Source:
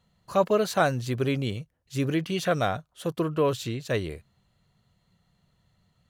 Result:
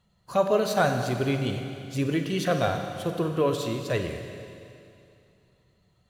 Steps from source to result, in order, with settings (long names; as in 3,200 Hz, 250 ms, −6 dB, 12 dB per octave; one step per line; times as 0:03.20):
spectral magnitudes quantised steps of 15 dB
four-comb reverb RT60 2.6 s, combs from 32 ms, DRR 5 dB